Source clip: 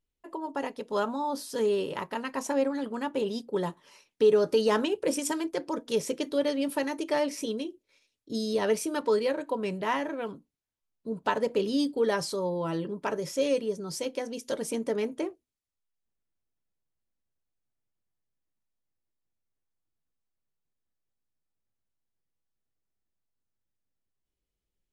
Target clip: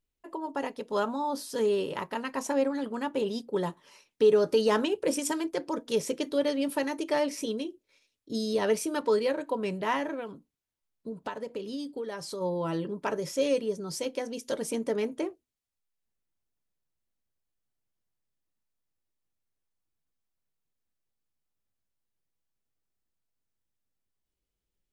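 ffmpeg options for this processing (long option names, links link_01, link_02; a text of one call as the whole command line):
ffmpeg -i in.wav -filter_complex "[0:a]asplit=3[link_01][link_02][link_03];[link_01]afade=type=out:start_time=10.19:duration=0.02[link_04];[link_02]acompressor=threshold=-34dB:ratio=5,afade=type=in:start_time=10.19:duration=0.02,afade=type=out:start_time=12.4:duration=0.02[link_05];[link_03]afade=type=in:start_time=12.4:duration=0.02[link_06];[link_04][link_05][link_06]amix=inputs=3:normalize=0" out.wav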